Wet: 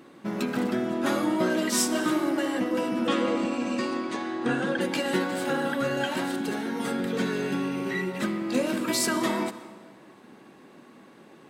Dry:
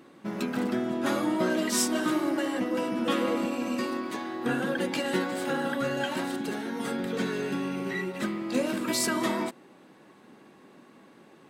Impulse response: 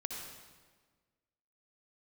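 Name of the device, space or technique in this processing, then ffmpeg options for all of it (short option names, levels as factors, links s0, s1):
compressed reverb return: -filter_complex "[0:a]asplit=2[s0][s1];[1:a]atrim=start_sample=2205[s2];[s1][s2]afir=irnorm=-1:irlink=0,acompressor=threshold=0.0398:ratio=6,volume=0.447[s3];[s0][s3]amix=inputs=2:normalize=0,asettb=1/sr,asplit=3[s4][s5][s6];[s4]atrim=end=3.074[s7];[s5]atrim=start=3.07:end=4.81,asetpts=PTS-STARTPTS,afade=t=in:d=0.004:c=qsin,afade=t=out:st=1.736:d=0.004:c=qsin,lowpass=f=8600:w=0.5412,lowpass=f=8600:w=1.3066[s8];[s6]atrim=start=4.806[s9];[s7][s8]acrossfade=d=0.004:c1=hsin:c2=qsin[s10];[s10][s9]acrossfade=d=0.004:c1=qsin:c2=hsin"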